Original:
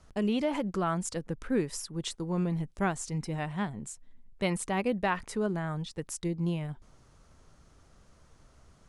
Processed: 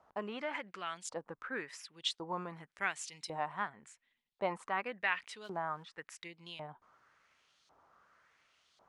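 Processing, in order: 2.26–3.68 s: treble shelf 6.1 kHz +10 dB; 5.44–5.92 s: short-mantissa float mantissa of 4-bit; LFO band-pass saw up 0.91 Hz 780–4000 Hz; trim +5 dB

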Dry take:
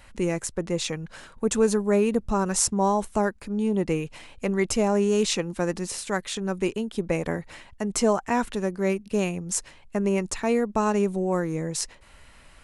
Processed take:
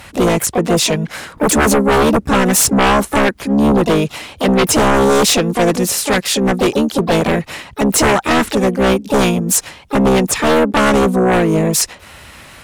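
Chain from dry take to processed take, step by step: high-pass 69 Hz 12 dB/octave; harmony voices +5 st -4 dB, +12 st -17 dB; sine folder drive 15 dB, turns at -4 dBFS; trim -4 dB

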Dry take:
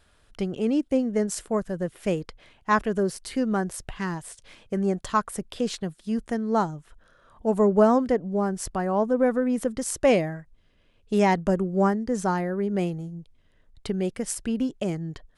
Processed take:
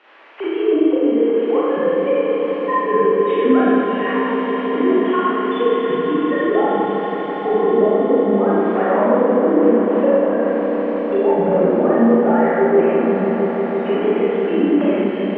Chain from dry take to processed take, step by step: formants replaced by sine waves; in parallel at -0.5 dB: compression, threshold -29 dBFS, peak gain reduction 17 dB; on the sum: band noise 320–2500 Hz -53 dBFS; low-pass that closes with the level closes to 310 Hz, closed at -14.5 dBFS; on a send: echo with a slow build-up 163 ms, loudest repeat 5, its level -12.5 dB; on the sum: Schroeder reverb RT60 2.4 s, combs from 27 ms, DRR -9 dB; trim -1.5 dB

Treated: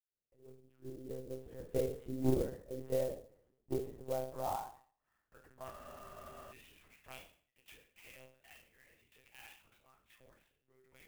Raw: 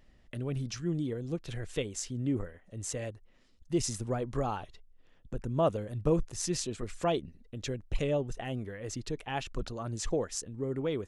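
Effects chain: fade-in on the opening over 3.04 s; Doppler pass-by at 2.39 s, 5 m/s, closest 2.3 m; saturation -31 dBFS, distortion -14 dB; band-pass sweep 450 Hz -> 2.4 kHz, 3.74–6.05 s; on a send: flutter echo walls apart 4.8 m, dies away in 0.47 s; on the sum: monotone LPC vocoder at 8 kHz 130 Hz; spectral freeze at 5.73 s, 0.78 s; sampling jitter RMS 0.038 ms; trim +10.5 dB

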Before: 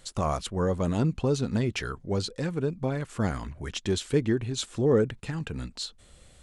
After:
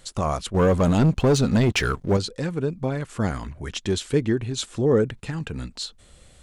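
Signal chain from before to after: 0.54–2.17 s: waveshaping leveller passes 2; trim +3 dB

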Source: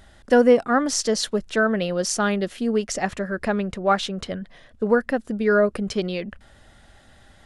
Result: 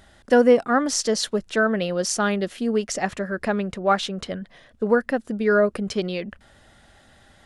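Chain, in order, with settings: bass shelf 63 Hz -8 dB

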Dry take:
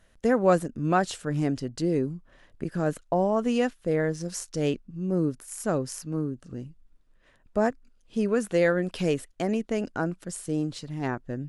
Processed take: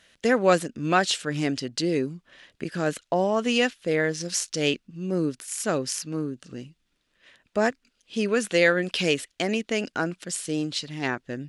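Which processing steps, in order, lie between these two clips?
frequency weighting D; trim +1.5 dB

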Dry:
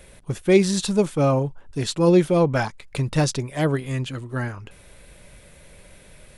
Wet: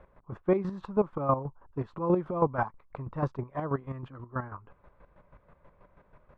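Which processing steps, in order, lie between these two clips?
square tremolo 6.2 Hz, depth 65%, duty 30%; resonant low-pass 1.1 kHz, resonance Q 3.8; trim -7 dB

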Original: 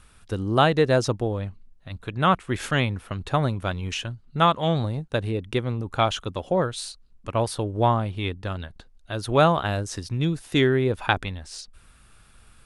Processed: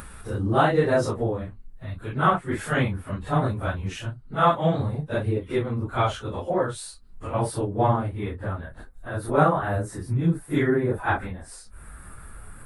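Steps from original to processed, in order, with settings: phase randomisation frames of 100 ms; upward compressor, threshold -29 dBFS; high-order bell 4.1 kHz -8 dB, from 8.08 s -15.5 dB

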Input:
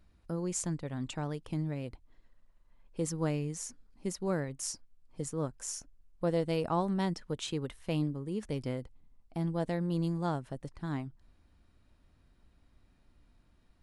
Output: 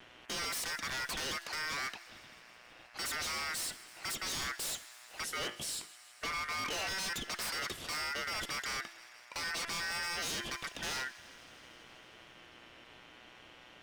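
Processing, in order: peaking EQ 1.3 kHz +12 dB 0.96 oct; overdrive pedal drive 29 dB, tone 5.9 kHz, clips at -13.5 dBFS; mains buzz 120 Hz, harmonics 9, -52 dBFS -1 dB/octave; feedback comb 340 Hz, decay 0.7 s, mix 50%; ring modulator 1.7 kHz; 5.24–6.87 s: feedback comb 53 Hz, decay 0.39 s, harmonics all, mix 60%; wavefolder -32 dBFS; vibrato 0.61 Hz 22 cents; feedback echo behind a high-pass 160 ms, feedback 79%, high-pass 1.6 kHz, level -19 dB

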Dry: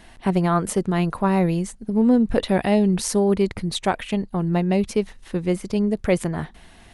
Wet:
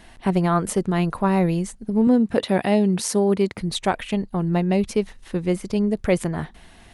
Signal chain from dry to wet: 2.07–3.61 s: high-pass 130 Hz 12 dB/octave

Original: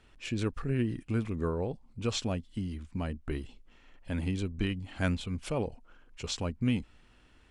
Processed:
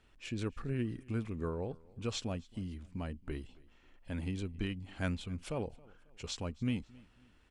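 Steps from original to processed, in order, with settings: feedback delay 271 ms, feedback 39%, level -24 dB; trim -5.5 dB

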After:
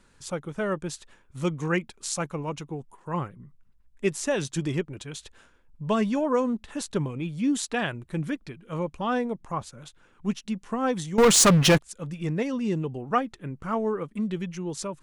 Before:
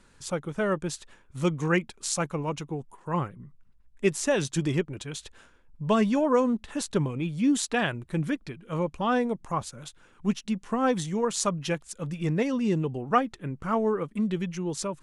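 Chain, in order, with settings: 9.21–10.26 s: treble shelf 4.8 kHz -5 dB; 11.18–11.79 s: waveshaping leveller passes 5; trim -1.5 dB

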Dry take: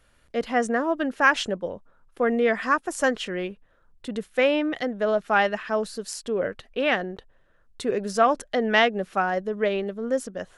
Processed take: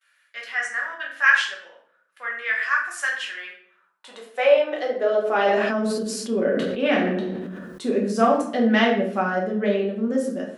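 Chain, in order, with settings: gate with hold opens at -55 dBFS; high-pass sweep 1.7 kHz -> 220 Hz, 3.29–5.89 s; simulated room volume 97 m³, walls mixed, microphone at 1.1 m; 5.25–7.89 s: decay stretcher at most 26 dB/s; trim -5 dB

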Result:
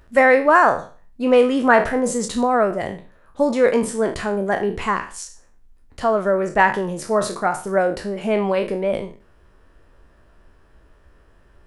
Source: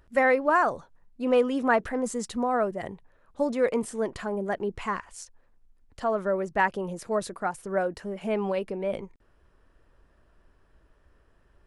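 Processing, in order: spectral sustain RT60 0.38 s; trim +7.5 dB

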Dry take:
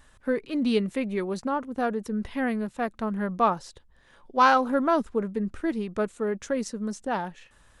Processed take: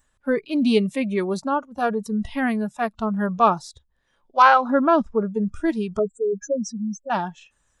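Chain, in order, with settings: 5.99–7.10 s: spectral contrast enhancement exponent 3.6; spectral noise reduction 17 dB; 4.42–5.25 s: low-pass 3.3 kHz 12 dB/octave; trim +5.5 dB

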